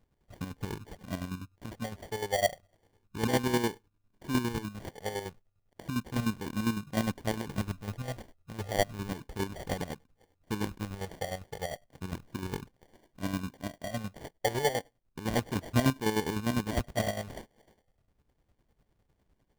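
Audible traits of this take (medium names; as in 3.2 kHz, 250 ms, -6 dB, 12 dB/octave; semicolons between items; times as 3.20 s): phasing stages 4, 0.33 Hz, lowest notch 260–1200 Hz; aliases and images of a low sample rate 1.3 kHz, jitter 0%; chopped level 9.9 Hz, depth 60%, duty 40%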